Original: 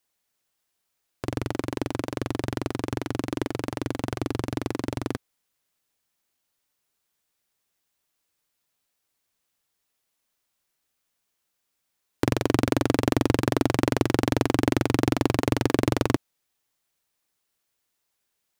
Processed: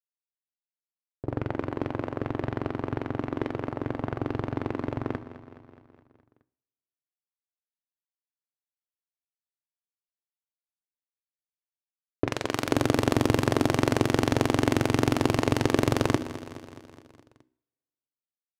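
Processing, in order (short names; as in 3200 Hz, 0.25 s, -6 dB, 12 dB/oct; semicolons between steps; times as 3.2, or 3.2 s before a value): de-hum 63.03 Hz, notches 8; low-pass opened by the level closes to 310 Hz, open at -19.5 dBFS; 12.27–12.69 low shelf 500 Hz -10.5 dB; crossover distortion -50.5 dBFS; feedback echo 0.21 s, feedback 60%, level -14 dB; reverb, pre-delay 3 ms, DRR 16 dB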